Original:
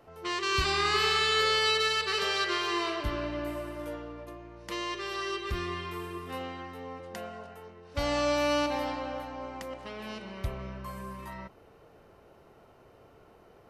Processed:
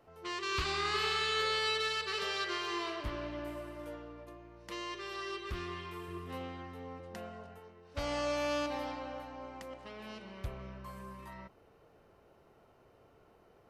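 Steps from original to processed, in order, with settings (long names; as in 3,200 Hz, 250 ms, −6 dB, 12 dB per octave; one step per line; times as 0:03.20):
0:06.08–0:07.59: low-shelf EQ 260 Hz +7 dB
highs frequency-modulated by the lows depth 0.26 ms
level −6.5 dB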